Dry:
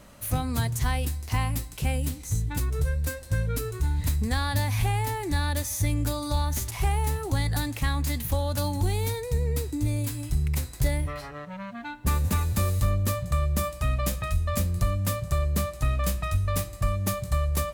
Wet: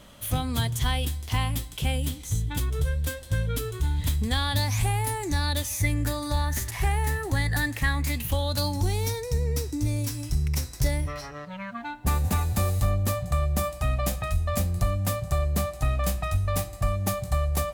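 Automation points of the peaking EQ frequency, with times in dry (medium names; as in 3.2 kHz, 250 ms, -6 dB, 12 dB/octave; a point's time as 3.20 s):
peaking EQ +13 dB 0.25 oct
4.54 s 3.3 kHz
4.97 s 13 kHz
5.90 s 1.8 kHz
7.90 s 1.8 kHz
8.80 s 5.6 kHz
11.43 s 5.6 kHz
11.85 s 750 Hz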